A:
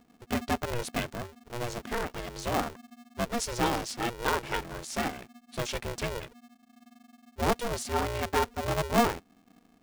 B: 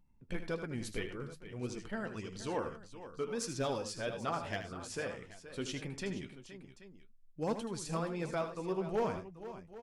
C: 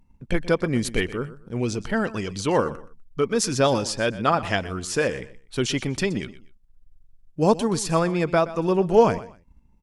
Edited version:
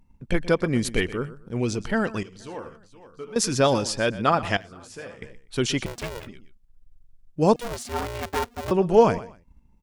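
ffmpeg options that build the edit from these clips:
-filter_complex "[1:a]asplit=2[a][b];[0:a]asplit=2[c][d];[2:a]asplit=5[e][f][g][h][i];[e]atrim=end=2.232[j];[a]atrim=start=2.228:end=3.362[k];[f]atrim=start=3.358:end=4.572[l];[b]atrim=start=4.568:end=5.222[m];[g]atrim=start=5.218:end=5.862[n];[c]atrim=start=5.858:end=6.272[o];[h]atrim=start=6.268:end=7.562[p];[d]atrim=start=7.558:end=8.712[q];[i]atrim=start=8.708[r];[j][k]acrossfade=d=0.004:c1=hsin:c2=hsin[s];[s][l]acrossfade=d=0.004:c1=hsin:c2=hsin[t];[t][m]acrossfade=d=0.004:c1=hsin:c2=hsin[u];[u][n]acrossfade=d=0.004:c1=hsin:c2=hsin[v];[v][o]acrossfade=d=0.004:c1=hsin:c2=hsin[w];[w][p]acrossfade=d=0.004:c1=hsin:c2=hsin[x];[x][q]acrossfade=d=0.004:c1=hsin:c2=hsin[y];[y][r]acrossfade=d=0.004:c1=hsin:c2=hsin"

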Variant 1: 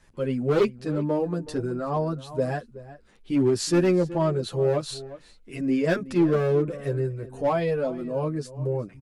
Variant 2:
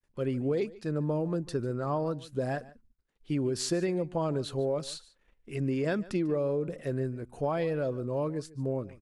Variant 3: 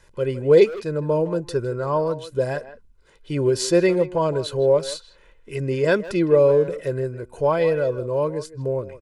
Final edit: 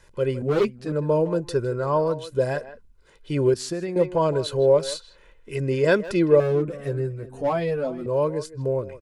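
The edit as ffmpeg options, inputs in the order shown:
-filter_complex "[0:a]asplit=2[a][b];[2:a]asplit=4[c][d][e][f];[c]atrim=end=0.422[g];[a]atrim=start=0.418:end=0.922[h];[d]atrim=start=0.918:end=3.542[i];[1:a]atrim=start=3.538:end=3.962[j];[e]atrim=start=3.958:end=6.402[k];[b]atrim=start=6.398:end=8.062[l];[f]atrim=start=8.058[m];[g][h]acrossfade=d=0.004:c1=hsin:c2=hsin[n];[n][i]acrossfade=d=0.004:c1=hsin:c2=hsin[o];[o][j]acrossfade=d=0.004:c1=hsin:c2=hsin[p];[p][k]acrossfade=d=0.004:c1=hsin:c2=hsin[q];[q][l]acrossfade=d=0.004:c1=hsin:c2=hsin[r];[r][m]acrossfade=d=0.004:c1=hsin:c2=hsin"

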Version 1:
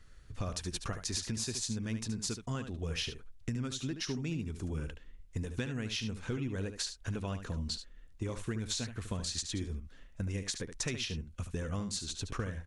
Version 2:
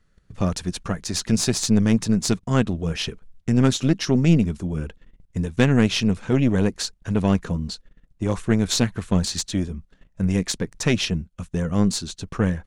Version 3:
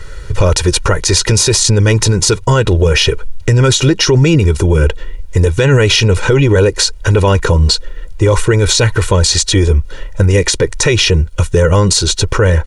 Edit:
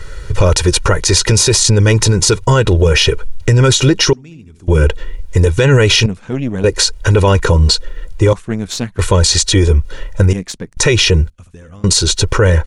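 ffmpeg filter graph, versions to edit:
-filter_complex "[0:a]asplit=2[a][b];[1:a]asplit=3[c][d][e];[2:a]asplit=6[f][g][h][i][j][k];[f]atrim=end=4.132[l];[a]atrim=start=4.128:end=4.682[m];[g]atrim=start=4.678:end=6.062[n];[c]atrim=start=6.058:end=6.642[o];[h]atrim=start=6.638:end=8.332[p];[d]atrim=start=8.328:end=8.992[q];[i]atrim=start=8.988:end=10.332[r];[e]atrim=start=10.328:end=10.772[s];[j]atrim=start=10.768:end=11.302[t];[b]atrim=start=11.298:end=11.842[u];[k]atrim=start=11.838[v];[l][m]acrossfade=d=0.004:c1=hsin:c2=hsin[w];[w][n]acrossfade=d=0.004:c1=hsin:c2=hsin[x];[x][o]acrossfade=d=0.004:c1=hsin:c2=hsin[y];[y][p]acrossfade=d=0.004:c1=hsin:c2=hsin[z];[z][q]acrossfade=d=0.004:c1=hsin:c2=hsin[aa];[aa][r]acrossfade=d=0.004:c1=hsin:c2=hsin[ab];[ab][s]acrossfade=d=0.004:c1=hsin:c2=hsin[ac];[ac][t]acrossfade=d=0.004:c1=hsin:c2=hsin[ad];[ad][u]acrossfade=d=0.004:c1=hsin:c2=hsin[ae];[ae][v]acrossfade=d=0.004:c1=hsin:c2=hsin"

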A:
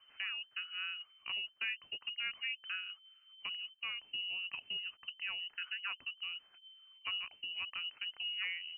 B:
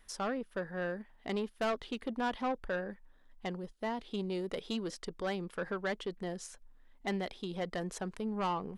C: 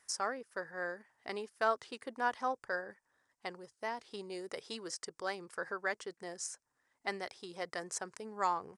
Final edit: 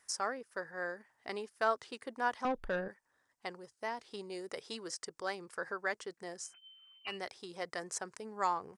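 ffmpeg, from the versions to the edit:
-filter_complex "[2:a]asplit=3[a][b][c];[a]atrim=end=2.452[d];[1:a]atrim=start=2.448:end=2.882[e];[b]atrim=start=2.878:end=6.54[f];[0:a]atrim=start=6.38:end=7.19[g];[c]atrim=start=7.03[h];[d][e]acrossfade=d=0.004:c1=hsin:c2=hsin[i];[i][f]acrossfade=d=0.004:c1=hsin:c2=hsin[j];[j][g]acrossfade=d=0.16:c1=tri:c2=tri[k];[k][h]acrossfade=d=0.16:c1=tri:c2=tri"

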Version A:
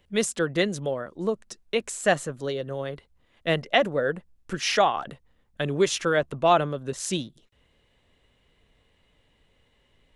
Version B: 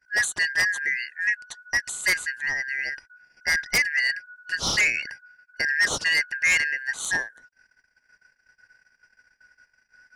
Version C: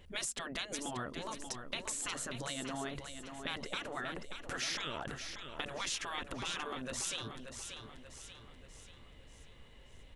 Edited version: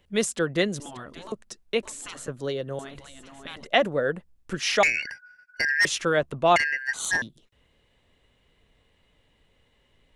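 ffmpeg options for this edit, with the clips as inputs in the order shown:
-filter_complex "[2:a]asplit=3[a][b][c];[1:a]asplit=2[d][e];[0:a]asplit=6[f][g][h][i][j][k];[f]atrim=end=0.802[l];[a]atrim=start=0.798:end=1.322[m];[g]atrim=start=1.318:end=1.832[n];[b]atrim=start=1.828:end=2.282[o];[h]atrim=start=2.278:end=2.792[p];[c]atrim=start=2.788:end=3.672[q];[i]atrim=start=3.668:end=4.832[r];[d]atrim=start=4.828:end=5.852[s];[j]atrim=start=5.848:end=6.562[t];[e]atrim=start=6.558:end=7.222[u];[k]atrim=start=7.218[v];[l][m]acrossfade=d=0.004:c1=hsin:c2=hsin[w];[w][n]acrossfade=d=0.004:c1=hsin:c2=hsin[x];[x][o]acrossfade=d=0.004:c1=hsin:c2=hsin[y];[y][p]acrossfade=d=0.004:c1=hsin:c2=hsin[z];[z][q]acrossfade=d=0.004:c1=hsin:c2=hsin[aa];[aa][r]acrossfade=d=0.004:c1=hsin:c2=hsin[ab];[ab][s]acrossfade=d=0.004:c1=hsin:c2=hsin[ac];[ac][t]acrossfade=d=0.004:c1=hsin:c2=hsin[ad];[ad][u]acrossfade=d=0.004:c1=hsin:c2=hsin[ae];[ae][v]acrossfade=d=0.004:c1=hsin:c2=hsin"

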